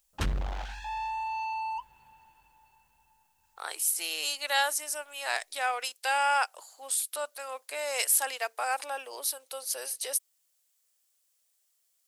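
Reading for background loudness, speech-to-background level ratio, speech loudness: −34.5 LKFS, 4.5 dB, −30.0 LKFS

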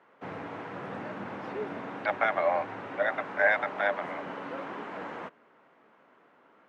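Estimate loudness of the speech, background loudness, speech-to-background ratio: −29.0 LKFS, −39.0 LKFS, 10.0 dB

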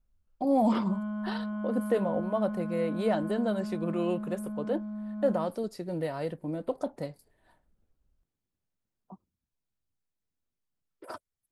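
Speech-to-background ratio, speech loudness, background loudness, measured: 4.5 dB, −31.5 LKFS, −36.0 LKFS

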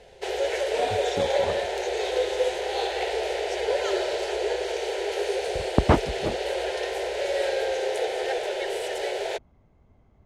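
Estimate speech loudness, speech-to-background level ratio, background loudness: −29.0 LKFS, −1.5 dB, −27.5 LKFS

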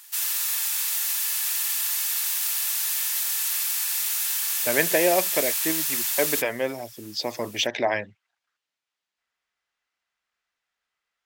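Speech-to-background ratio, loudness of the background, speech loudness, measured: −3.5 dB, −23.0 LKFS, −26.5 LKFS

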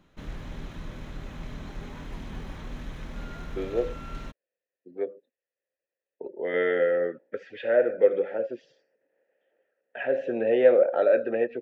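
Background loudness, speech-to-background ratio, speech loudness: −41.0 LKFS, 16.0 dB, −25.0 LKFS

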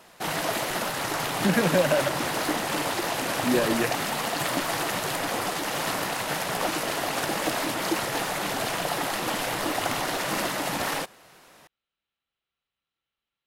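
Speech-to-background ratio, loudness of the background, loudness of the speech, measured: 1.5 dB, −27.5 LKFS, −26.0 LKFS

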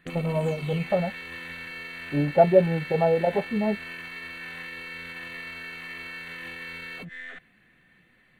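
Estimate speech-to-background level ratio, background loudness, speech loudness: 12.5 dB, −37.0 LKFS, −24.5 LKFS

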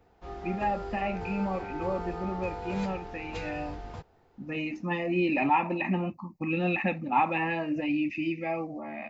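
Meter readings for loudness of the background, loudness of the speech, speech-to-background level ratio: −39.5 LKFS, −30.5 LKFS, 9.0 dB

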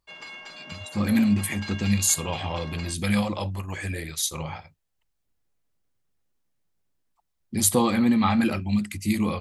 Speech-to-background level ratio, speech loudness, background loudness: 15.0 dB, −24.5 LKFS, −39.5 LKFS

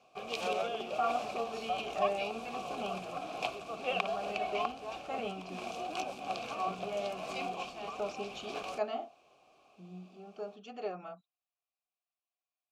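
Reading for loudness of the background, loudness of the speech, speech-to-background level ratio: −38.5 LKFS, −40.5 LKFS, −2.0 dB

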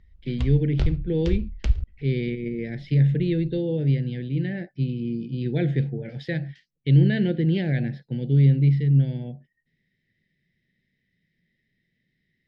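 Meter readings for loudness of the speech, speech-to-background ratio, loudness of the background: −24.0 LKFS, 6.5 dB, −30.5 LKFS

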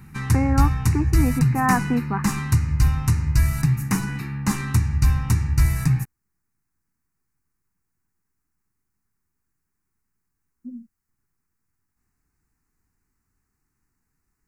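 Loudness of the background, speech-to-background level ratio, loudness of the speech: −22.0 LKFS, −3.0 dB, −25.0 LKFS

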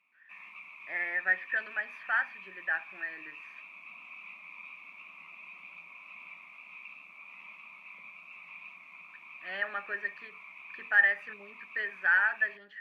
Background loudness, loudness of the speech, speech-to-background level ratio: −47.0 LKFS, −30.0 LKFS, 17.0 dB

